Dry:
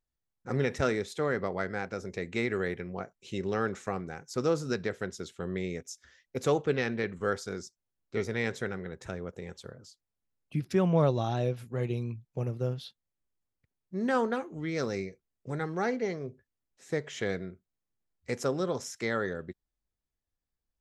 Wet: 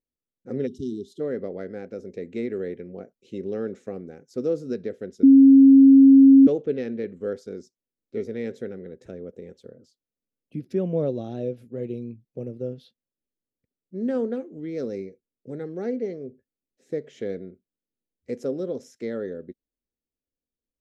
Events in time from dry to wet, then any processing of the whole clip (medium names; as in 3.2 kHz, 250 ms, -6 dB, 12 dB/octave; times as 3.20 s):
0.67–1.20 s: spectral selection erased 430–2800 Hz
5.23–6.47 s: bleep 271 Hz -12.5 dBFS
whole clip: ten-band graphic EQ 250 Hz +12 dB, 500 Hz +12 dB, 1 kHz -11 dB, 8 kHz -4 dB; trim -9 dB